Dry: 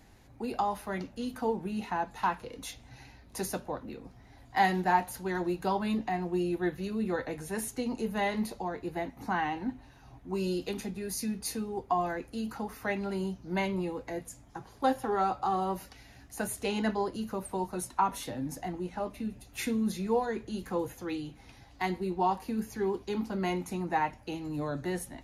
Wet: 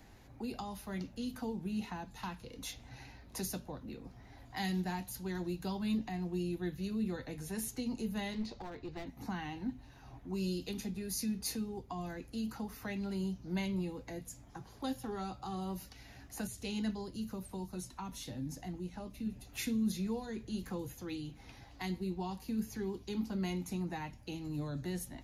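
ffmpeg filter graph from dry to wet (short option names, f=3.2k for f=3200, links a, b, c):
-filter_complex "[0:a]asettb=1/sr,asplit=3[a][b][c];[a]atrim=end=8.334[d];[b]atrim=start=8.33:end=9.07,asetpts=PTS-STARTPTS,afade=t=in:d=0.004:c=qsin,afade=t=out:st=0.736:d=0.004:c=qsin,lowpass=f=5.7k:w=0.5412,lowpass=f=5.7k:w=1.3066,equalizer=f=180:w=5.8:g=-9.5,aeval=exprs='clip(val(0),-1,0.02)':c=same[e];[c]atrim=start=9.066[f];[d][e]acrossfade=d=0.004:c1=hsin:c2=qsin[g];[g][f]acrossfade=d=0.004:c1=qsin:c2=hsin,asettb=1/sr,asplit=3[h][i][j];[h]atrim=end=16.474[k];[i]atrim=start=16.47:end=19.26,asetpts=PTS-STARTPTS,afade=t=in:d=0.004:c=qsin,afade=t=out:st=2.786:d=0.004:c=qsin,acrossover=split=8600[l][m];[m]acompressor=threshold=-54dB:ratio=4:attack=1:release=60[n];[l][n]amix=inputs=2:normalize=0,equalizer=f=930:w=0.36:g=-5.5[o];[j]atrim=start=19.256[p];[k][o]acrossfade=d=0.004:c1=hsin:c2=qsin[q];[q][p]acrossfade=d=0.004:c1=qsin:c2=hsin,equalizer=f=8.9k:t=o:w=0.38:g=-6,acrossover=split=250|3000[r][s][t];[s]acompressor=threshold=-51dB:ratio=2.5[u];[r][u][t]amix=inputs=3:normalize=0"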